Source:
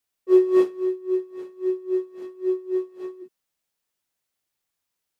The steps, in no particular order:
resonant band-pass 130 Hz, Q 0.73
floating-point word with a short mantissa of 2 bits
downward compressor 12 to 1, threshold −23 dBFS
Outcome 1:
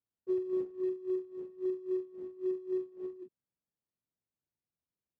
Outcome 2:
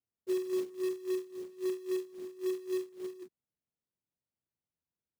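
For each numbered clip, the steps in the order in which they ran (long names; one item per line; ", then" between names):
downward compressor, then floating-point word with a short mantissa, then resonant band-pass
downward compressor, then resonant band-pass, then floating-point word with a short mantissa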